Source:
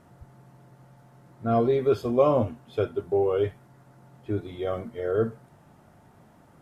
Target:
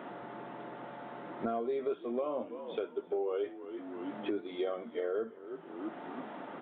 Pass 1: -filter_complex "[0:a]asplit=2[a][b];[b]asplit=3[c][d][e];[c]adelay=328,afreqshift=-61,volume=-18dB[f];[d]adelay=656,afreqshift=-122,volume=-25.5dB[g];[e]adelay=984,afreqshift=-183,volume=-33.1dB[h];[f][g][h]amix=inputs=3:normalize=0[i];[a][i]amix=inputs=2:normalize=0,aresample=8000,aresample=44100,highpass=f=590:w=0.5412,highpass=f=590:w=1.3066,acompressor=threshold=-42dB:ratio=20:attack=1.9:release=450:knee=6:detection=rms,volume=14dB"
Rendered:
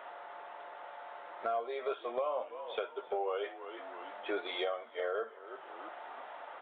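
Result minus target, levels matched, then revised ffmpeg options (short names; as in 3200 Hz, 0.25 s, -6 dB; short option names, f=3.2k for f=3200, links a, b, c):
250 Hz band -10.0 dB
-filter_complex "[0:a]asplit=2[a][b];[b]asplit=3[c][d][e];[c]adelay=328,afreqshift=-61,volume=-18dB[f];[d]adelay=656,afreqshift=-122,volume=-25.5dB[g];[e]adelay=984,afreqshift=-183,volume=-33.1dB[h];[f][g][h]amix=inputs=3:normalize=0[i];[a][i]amix=inputs=2:normalize=0,aresample=8000,aresample=44100,highpass=f=250:w=0.5412,highpass=f=250:w=1.3066,acompressor=threshold=-42dB:ratio=20:attack=1.9:release=450:knee=6:detection=rms,volume=14dB"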